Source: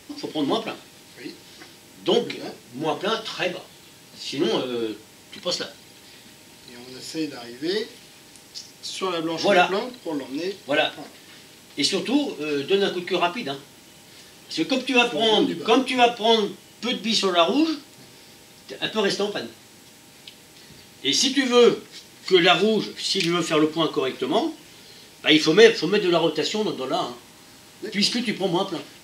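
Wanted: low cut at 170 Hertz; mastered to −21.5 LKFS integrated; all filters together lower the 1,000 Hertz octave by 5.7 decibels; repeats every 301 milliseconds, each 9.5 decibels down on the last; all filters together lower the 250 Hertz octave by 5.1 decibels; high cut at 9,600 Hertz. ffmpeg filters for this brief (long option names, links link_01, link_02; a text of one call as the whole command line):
ffmpeg -i in.wav -af "highpass=170,lowpass=9600,equalizer=frequency=250:width_type=o:gain=-5.5,equalizer=frequency=1000:width_type=o:gain=-8.5,aecho=1:1:301|602|903|1204:0.335|0.111|0.0365|0.012,volume=3dB" out.wav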